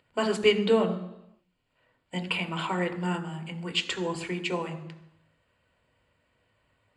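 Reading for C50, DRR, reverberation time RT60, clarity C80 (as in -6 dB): 12.5 dB, 6.0 dB, 0.85 s, 14.0 dB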